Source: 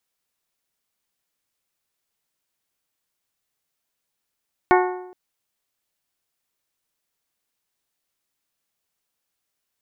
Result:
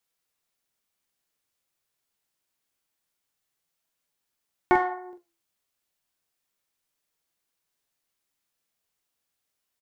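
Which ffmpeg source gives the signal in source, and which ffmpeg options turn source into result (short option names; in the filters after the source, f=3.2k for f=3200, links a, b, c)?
-f lavfi -i "aevalsrc='0.224*pow(10,-3*t/0.84)*sin(2*PI*365*t)+0.178*pow(10,-3*t/0.682)*sin(2*PI*730*t)+0.141*pow(10,-3*t/0.646)*sin(2*PI*876*t)+0.112*pow(10,-3*t/0.604)*sin(2*PI*1095*t)+0.0891*pow(10,-3*t/0.554)*sin(2*PI*1460*t)+0.0708*pow(10,-3*t/0.518)*sin(2*PI*1825*t)+0.0562*pow(10,-3*t/0.491)*sin(2*PI*2190*t)':d=0.42:s=44100"
-filter_complex "[0:a]asplit=2[a][b];[b]asoftclip=type=tanh:threshold=-21dB,volume=-11dB[c];[a][c]amix=inputs=2:normalize=0,flanger=delay=5.9:depth=9.3:regen=71:speed=0.27:shape=sinusoidal,asplit=2[d][e];[e]adelay=45,volume=-8dB[f];[d][f]amix=inputs=2:normalize=0"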